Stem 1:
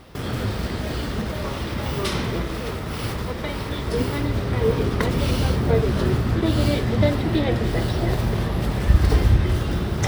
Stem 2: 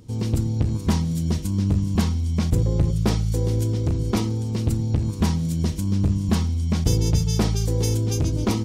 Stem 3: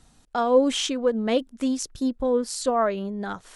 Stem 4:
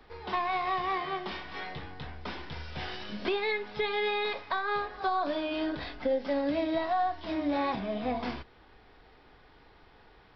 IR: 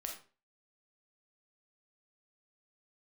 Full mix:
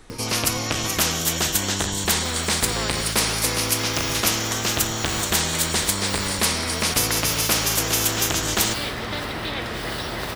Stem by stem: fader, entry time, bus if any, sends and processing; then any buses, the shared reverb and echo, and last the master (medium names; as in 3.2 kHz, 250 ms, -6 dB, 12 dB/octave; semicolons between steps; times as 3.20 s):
-18.0 dB, 2.10 s, send -5.5 dB, none
+1.5 dB, 0.10 s, no send, drifting ripple filter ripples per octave 0.93, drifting +0.29 Hz, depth 10 dB
-14.0 dB, 0.00 s, no send, tremolo 1.8 Hz, depth 74%
-13.5 dB, 0.00 s, no send, none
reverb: on, RT60 0.35 s, pre-delay 4 ms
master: peaking EQ 780 Hz -4.5 dB; spectrum-flattening compressor 4:1